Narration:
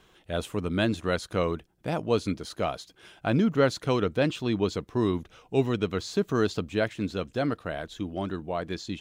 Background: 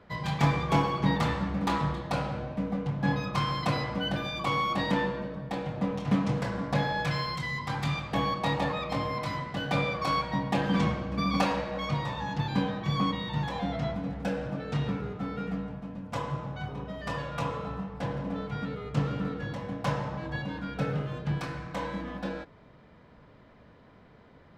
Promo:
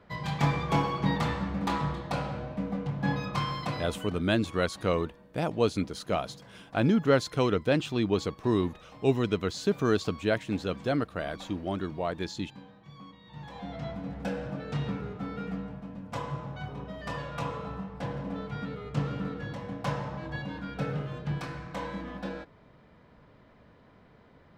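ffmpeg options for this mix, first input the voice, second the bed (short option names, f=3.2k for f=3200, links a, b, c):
-filter_complex "[0:a]adelay=3500,volume=-0.5dB[a];[1:a]volume=17.5dB,afade=t=out:st=3.38:d=0.86:silence=0.105925,afade=t=in:st=13.22:d=1.02:silence=0.112202[b];[a][b]amix=inputs=2:normalize=0"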